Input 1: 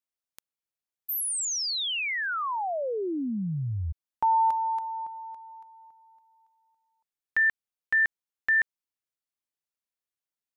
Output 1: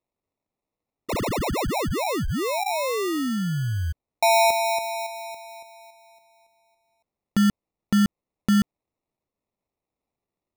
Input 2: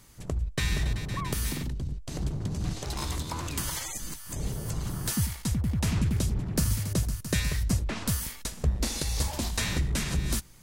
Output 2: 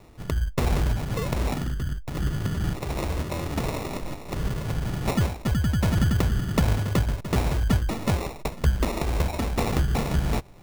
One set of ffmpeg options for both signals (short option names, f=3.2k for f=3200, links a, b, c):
-af "acrusher=samples=28:mix=1:aa=0.000001,volume=4.5dB"